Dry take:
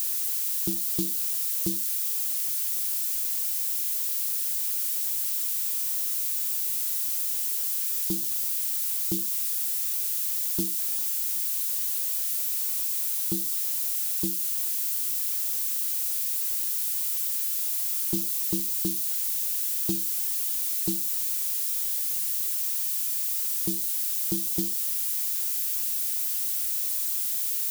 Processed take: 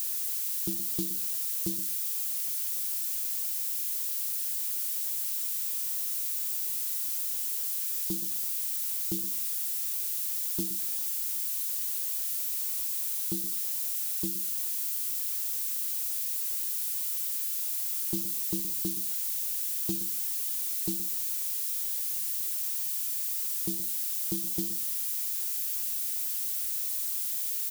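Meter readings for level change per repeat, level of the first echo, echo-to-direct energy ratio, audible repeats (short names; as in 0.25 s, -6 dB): -15.5 dB, -13.0 dB, -13.0 dB, 2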